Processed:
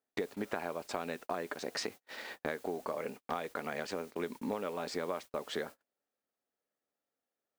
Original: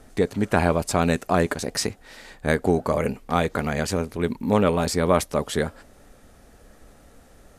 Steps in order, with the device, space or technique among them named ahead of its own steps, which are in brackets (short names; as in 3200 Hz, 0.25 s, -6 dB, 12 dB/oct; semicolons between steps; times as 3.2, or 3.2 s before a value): baby monitor (BPF 320–4400 Hz; compressor 12:1, threshold -34 dBFS, peak gain reduction 20.5 dB; white noise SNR 20 dB; gate -46 dBFS, range -38 dB); gain +1 dB